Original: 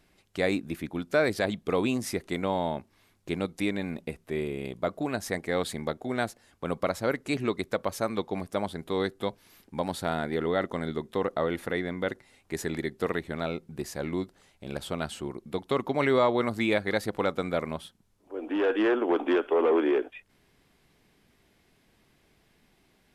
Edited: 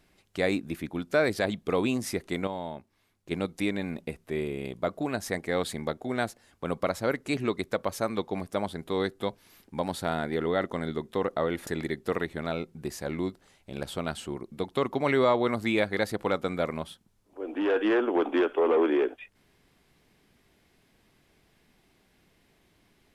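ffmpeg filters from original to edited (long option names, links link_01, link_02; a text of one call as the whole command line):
ffmpeg -i in.wav -filter_complex "[0:a]asplit=4[link_01][link_02][link_03][link_04];[link_01]atrim=end=2.472[link_05];[link_02]atrim=start=2.468:end=3.312,asetpts=PTS-STARTPTS,volume=-7dB[link_06];[link_03]atrim=start=3.308:end=11.672[link_07];[link_04]atrim=start=12.608[link_08];[link_05][link_06]acrossfade=duration=0.004:curve1=hsin:curve2=hsin[link_09];[link_09][link_07]acrossfade=duration=0.004:curve1=hsin:curve2=hsin[link_10];[link_10][link_08]acrossfade=duration=0.004:curve1=hsin:curve2=hsin" out.wav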